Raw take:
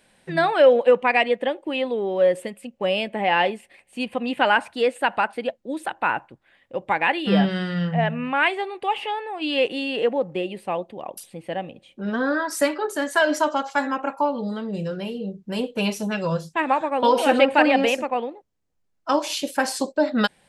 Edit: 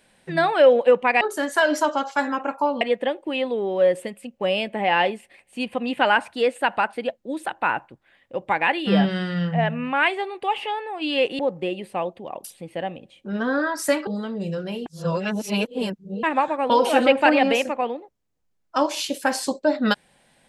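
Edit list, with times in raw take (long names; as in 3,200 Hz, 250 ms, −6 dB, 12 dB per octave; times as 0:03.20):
0:09.79–0:10.12: remove
0:12.80–0:14.40: move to 0:01.21
0:15.19–0:16.56: reverse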